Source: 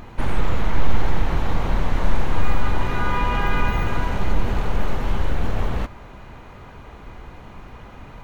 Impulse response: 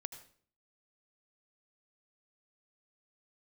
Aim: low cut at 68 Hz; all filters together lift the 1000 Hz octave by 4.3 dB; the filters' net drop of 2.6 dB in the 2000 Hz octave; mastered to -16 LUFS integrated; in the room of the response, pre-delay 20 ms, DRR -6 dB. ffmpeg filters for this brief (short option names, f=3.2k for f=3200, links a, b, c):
-filter_complex "[0:a]highpass=68,equalizer=f=1k:t=o:g=6.5,equalizer=f=2k:t=o:g=-6.5,asplit=2[a][b];[1:a]atrim=start_sample=2205,adelay=20[c];[b][c]afir=irnorm=-1:irlink=0,volume=9dB[d];[a][d]amix=inputs=2:normalize=0,volume=3dB"